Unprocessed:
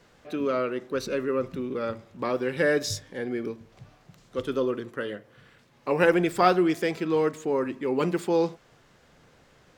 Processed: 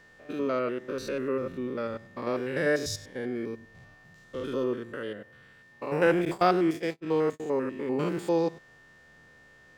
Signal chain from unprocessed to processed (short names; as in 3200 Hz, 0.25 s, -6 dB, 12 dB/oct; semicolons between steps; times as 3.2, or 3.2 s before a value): stepped spectrum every 0.1 s; whine 1800 Hz -54 dBFS; 6.25–7.4 gate -29 dBFS, range -38 dB; gain -1 dB